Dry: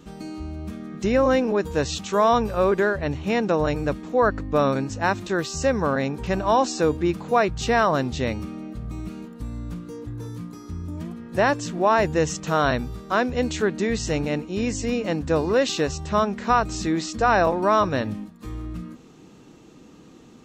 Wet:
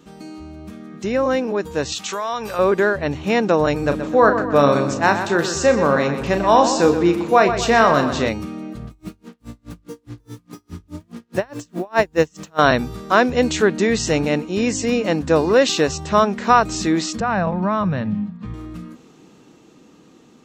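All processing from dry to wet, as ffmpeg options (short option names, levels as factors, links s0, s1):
-filter_complex "[0:a]asettb=1/sr,asplit=3[s0][s1][s2];[s0]atrim=end=1.924[s3];[s1]atrim=start=1.92:end=2.59,asetpts=PTS-STARTPTS,afade=t=in:d=0.004:c=qsin,afade=t=out:st=0.666:d=0.004:c=qsin,tiltshelf=f=640:g=-7,acompressor=threshold=0.0631:ratio=6:attack=3.2:release=140:knee=1:detection=peak[s4];[s2]atrim=start=2.586[s5];[s3][s4]acrossfade=d=0.004:c1=hsin:c2=qsin[s6];[s6][s5]acrossfade=d=0.004:c1=qsin:c2=hsin,asettb=1/sr,asplit=3[s7][s8][s9];[s7]atrim=end=3.794[s10];[s8]atrim=start=3.79:end=8.29,asetpts=PTS-STARTPTS,afade=t=in:d=0.004:c=qsin,afade=t=out:st=4.496:d=0.004:c=qsin,asplit=2[s11][s12];[s12]adelay=35,volume=0.376[s13];[s11][s13]amix=inputs=2:normalize=0,atrim=end_sample=198450,asplit=2[s14][s15];[s15]adelay=125,lowpass=f=4700:p=1,volume=0.355,asplit=2[s16][s17];[s17]adelay=125,lowpass=f=4700:p=1,volume=0.47,asplit=2[s18][s19];[s19]adelay=125,lowpass=f=4700:p=1,volume=0.47,asplit=2[s20][s21];[s21]adelay=125,lowpass=f=4700:p=1,volume=0.47,asplit=2[s22][s23];[s23]adelay=125,lowpass=f=4700:p=1,volume=0.47[s24];[s14][s16][s18][s20][s22][s24]amix=inputs=6:normalize=0,atrim=end_sample=198450[s25];[s9]atrim=start=8.286[s26];[s10][s25]acrossfade=d=0.004:c1=hsin:c2=qsin[s27];[s27][s26]acrossfade=d=0.004:c1=qsin:c2=hsin,asettb=1/sr,asplit=3[s28][s29][s30];[s28]atrim=end=8.874[s31];[s29]atrim=start=8.87:end=12.59,asetpts=PTS-STARTPTS,afade=t=in:d=0.004:c=qsin,afade=t=out:st=3.716:d=0.004:c=qsin,acrusher=bits=7:mix=0:aa=0.5,aeval=exprs='val(0)*pow(10,-37*(0.5-0.5*cos(2*PI*4.8*n/s))/20)':c=same[s32];[s30]atrim=start=12.586[s33];[s31][s32]acrossfade=d=0.004:c1=hsin:c2=qsin[s34];[s34][s33]acrossfade=d=0.004:c1=qsin:c2=hsin,asettb=1/sr,asplit=3[s35][s36][s37];[s35]atrim=end=17.204[s38];[s36]atrim=start=17.2:end=18.54,asetpts=PTS-STARTPTS,afade=t=in:d=0.004:c=qsin,afade=t=out:st=1.336:d=0.004:c=qsin,lowpass=3000,acompressor=threshold=0.0178:ratio=1.5:attack=3.2:release=140:knee=1:detection=peak,lowshelf=f=240:t=q:w=3:g=7.5[s39];[s37]atrim=start=18.536[s40];[s38][s39]acrossfade=d=0.004:c1=hsin:c2=qsin[s41];[s41][s40]acrossfade=d=0.004:c1=qsin:c2=hsin,lowshelf=f=90:g=-11.5,bandreject=f=50:t=h:w=6,bandreject=f=100:t=h:w=6,dynaudnorm=f=400:g=13:m=3.76"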